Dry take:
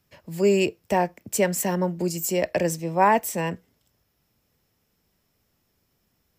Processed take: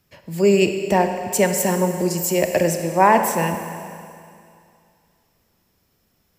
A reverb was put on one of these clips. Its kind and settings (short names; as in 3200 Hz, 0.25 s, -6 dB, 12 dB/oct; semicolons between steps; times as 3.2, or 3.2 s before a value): Schroeder reverb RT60 2.4 s, combs from 32 ms, DRR 6 dB; gain +4 dB